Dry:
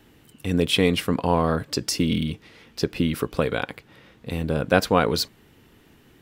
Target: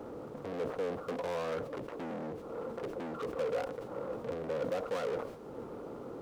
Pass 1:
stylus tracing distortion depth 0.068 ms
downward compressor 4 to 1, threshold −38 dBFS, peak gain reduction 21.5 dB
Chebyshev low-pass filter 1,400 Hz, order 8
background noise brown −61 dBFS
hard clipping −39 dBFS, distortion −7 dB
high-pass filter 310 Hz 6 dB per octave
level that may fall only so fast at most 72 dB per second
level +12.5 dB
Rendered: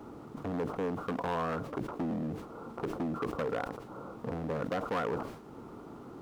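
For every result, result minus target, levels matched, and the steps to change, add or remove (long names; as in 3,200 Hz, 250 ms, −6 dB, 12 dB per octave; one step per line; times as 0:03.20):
hard clipping: distortion −6 dB; 500 Hz band −3.5 dB
change: hard clipping −50 dBFS, distortion −1 dB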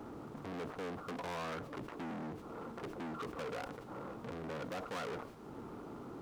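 500 Hz band −3.5 dB
add after high-pass filter: parametric band 510 Hz +12.5 dB 0.52 octaves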